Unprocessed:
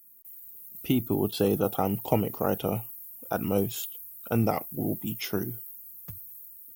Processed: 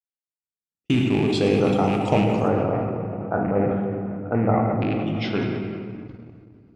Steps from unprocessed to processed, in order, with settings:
loose part that buzzes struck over −26 dBFS, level −26 dBFS
elliptic low-pass filter 8,000 Hz, stop band 80 dB, from 0:02.47 1,900 Hz, from 0:04.77 4,500 Hz
rectangular room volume 130 cubic metres, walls hard, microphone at 0.36 metres
noise gate −37 dBFS, range −44 dB
level that may fall only so fast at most 24 dB per second
level +3.5 dB

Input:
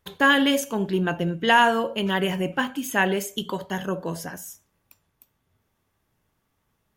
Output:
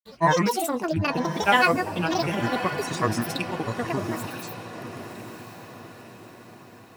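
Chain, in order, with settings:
granular cloud 100 ms, grains 20 per second, spray 100 ms, pitch spread up and down by 12 semitones
feedback delay with all-pass diffusion 1,031 ms, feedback 50%, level −10 dB

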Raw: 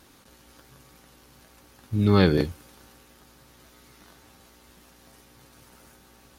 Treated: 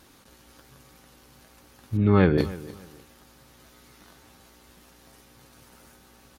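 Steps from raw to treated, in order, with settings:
0:01.97–0:02.38: low-pass filter 2,600 Hz 24 dB per octave
repeating echo 296 ms, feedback 27%, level −18.5 dB

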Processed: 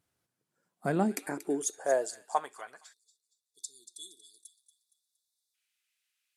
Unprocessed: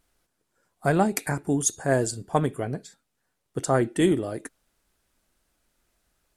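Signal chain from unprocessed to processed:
high-pass filter sweep 110 Hz → 2,500 Hz, 0:00.24–0:03.52
delay with a high-pass on its return 233 ms, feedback 38%, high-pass 2,300 Hz, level −12 dB
time-frequency box erased 0:02.93–0:05.54, 470–3,400 Hz
level −9 dB

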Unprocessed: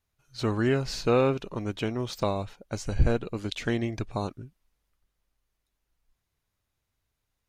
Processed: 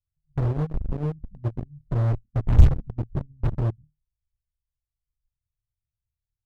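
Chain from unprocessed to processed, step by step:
inverse Chebyshev low-pass filter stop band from 590 Hz, stop band 80 dB
on a send: flutter between parallel walls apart 5.3 metres, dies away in 0.25 s
on the sum: harmonic and percussive parts rebalanced percussive +8 dB
noise reduction from a noise print of the clip's start 11 dB
in parallel at −11 dB: fuzz pedal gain 44 dB, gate −39 dBFS
on the sum: speed change +16%
level +3.5 dB

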